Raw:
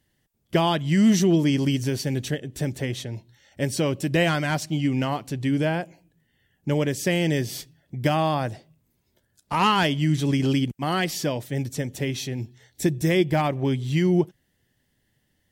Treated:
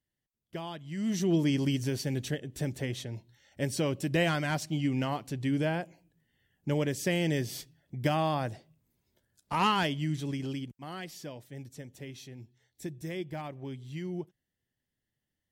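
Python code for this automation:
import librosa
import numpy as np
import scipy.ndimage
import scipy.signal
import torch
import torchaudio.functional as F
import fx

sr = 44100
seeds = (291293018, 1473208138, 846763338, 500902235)

y = fx.gain(x, sr, db=fx.line((0.91, -18.0), (1.36, -6.0), (9.66, -6.0), (10.82, -16.5)))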